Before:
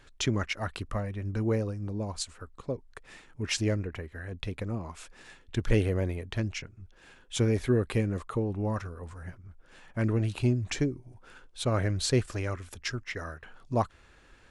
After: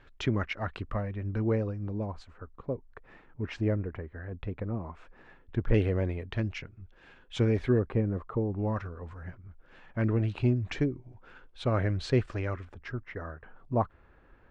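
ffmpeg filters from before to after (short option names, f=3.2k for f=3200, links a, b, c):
-af "asetnsamples=n=441:p=0,asendcmd='2.06 lowpass f 1500;5.74 lowpass f 3100;7.79 lowpass f 1200;8.59 lowpass f 2800;12.65 lowpass f 1400',lowpass=2.6k"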